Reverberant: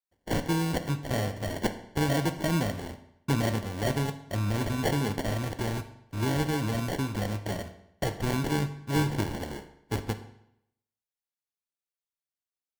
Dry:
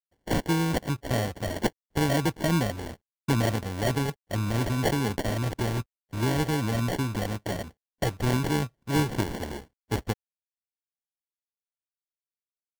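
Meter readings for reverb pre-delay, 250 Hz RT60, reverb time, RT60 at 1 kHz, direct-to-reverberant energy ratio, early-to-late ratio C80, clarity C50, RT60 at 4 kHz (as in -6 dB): 15 ms, 0.75 s, 0.75 s, 0.75 s, 9.0 dB, 14.0 dB, 12.0 dB, 0.65 s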